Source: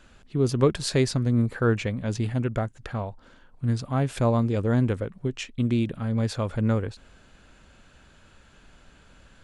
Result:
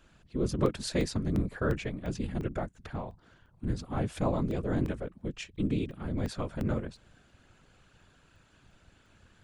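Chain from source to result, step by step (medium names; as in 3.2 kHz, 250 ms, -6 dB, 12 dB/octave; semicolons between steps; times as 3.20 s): whisper effect; crackling interface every 0.35 s, samples 64, zero, from 0.66 s; trim -7 dB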